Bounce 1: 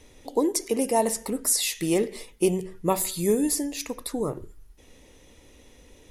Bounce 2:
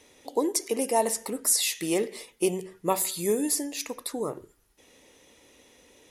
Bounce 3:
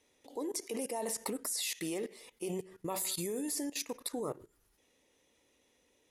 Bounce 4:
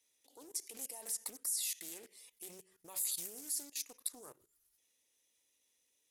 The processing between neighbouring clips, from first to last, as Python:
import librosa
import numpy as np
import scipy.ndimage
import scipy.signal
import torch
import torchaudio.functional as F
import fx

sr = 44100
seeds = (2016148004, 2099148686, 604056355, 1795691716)

y1 = fx.highpass(x, sr, hz=370.0, slope=6)
y2 = fx.level_steps(y1, sr, step_db=18)
y3 = F.preemphasis(torch.from_numpy(y2), 0.9).numpy()
y3 = fx.doppler_dist(y3, sr, depth_ms=0.33)